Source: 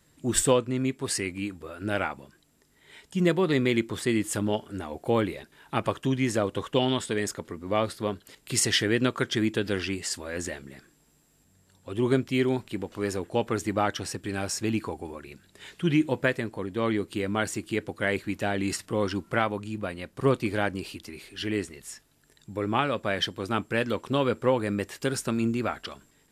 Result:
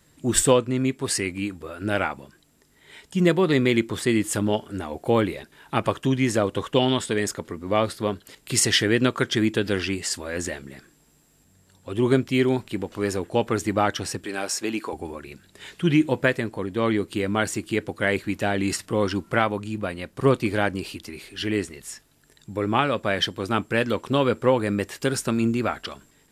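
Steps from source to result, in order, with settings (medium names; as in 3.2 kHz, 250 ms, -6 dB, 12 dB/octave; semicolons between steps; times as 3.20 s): 14.24–14.93 s: high-pass 320 Hz 12 dB/octave; trim +4 dB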